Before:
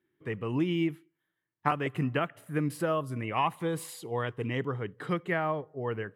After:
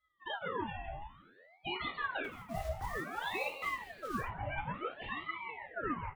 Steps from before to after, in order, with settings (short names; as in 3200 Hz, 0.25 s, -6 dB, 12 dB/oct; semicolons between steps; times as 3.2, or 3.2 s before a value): sine-wave speech; limiter -24.5 dBFS, peak gain reduction 9.5 dB; compressor 4:1, threshold -37 dBFS, peak gain reduction 8.5 dB; 5.26–5.67 Gaussian blur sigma 11 samples; frequency-shifting echo 0.166 s, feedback 46%, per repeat +90 Hz, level -11 dB; 2.24–4.21 short-mantissa float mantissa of 2-bit; reverb, pre-delay 3 ms, DRR -2 dB; ring modulator with a swept carrier 1000 Hz, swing 65%, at 0.56 Hz